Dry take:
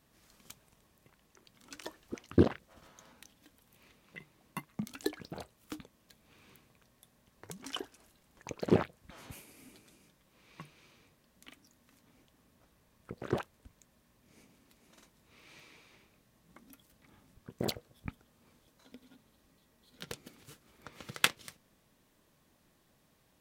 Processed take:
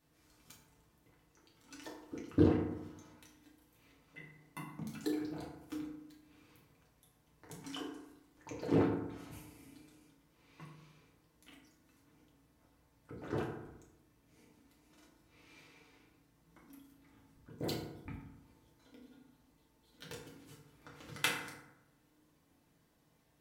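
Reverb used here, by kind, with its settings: FDN reverb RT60 0.91 s, low-frequency decay 1.2×, high-frequency decay 0.5×, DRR -5 dB; gain -9.5 dB

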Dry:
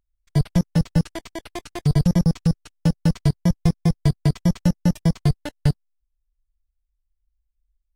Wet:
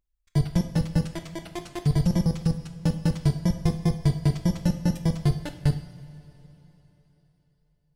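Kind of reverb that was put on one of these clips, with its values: two-slope reverb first 0.59 s, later 3.9 s, from -16 dB, DRR 6 dB; gain -4 dB

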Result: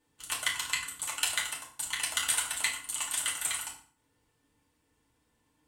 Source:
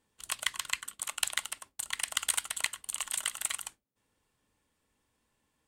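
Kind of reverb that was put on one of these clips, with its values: FDN reverb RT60 0.5 s, low-frequency decay 1.5×, high-frequency decay 0.8×, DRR -4 dB; gain -2.5 dB

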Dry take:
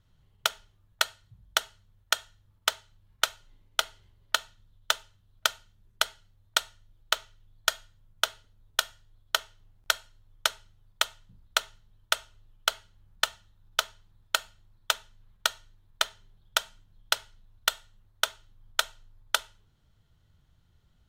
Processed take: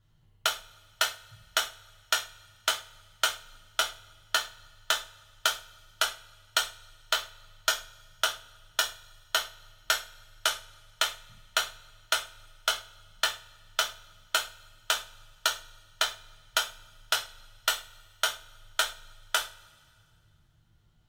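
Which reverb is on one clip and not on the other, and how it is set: two-slope reverb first 0.29 s, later 2.2 s, from -28 dB, DRR -2.5 dB; gain -4 dB

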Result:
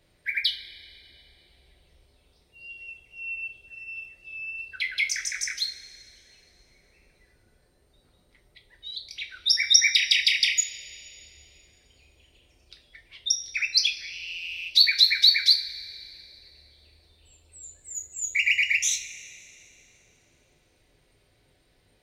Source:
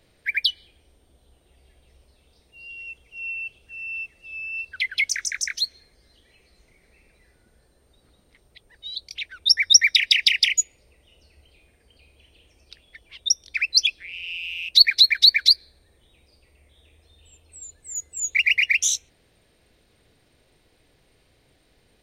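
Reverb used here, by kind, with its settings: two-slope reverb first 0.29 s, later 2.7 s, from -19 dB, DRR 2.5 dB; gain -5 dB

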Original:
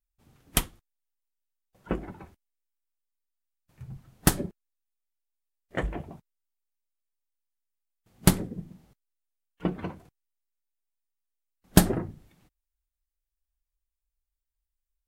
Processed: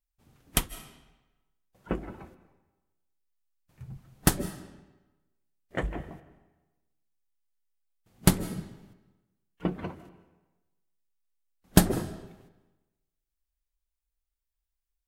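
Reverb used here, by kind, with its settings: digital reverb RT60 1.1 s, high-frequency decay 0.85×, pre-delay 0.115 s, DRR 15 dB; gain -1 dB

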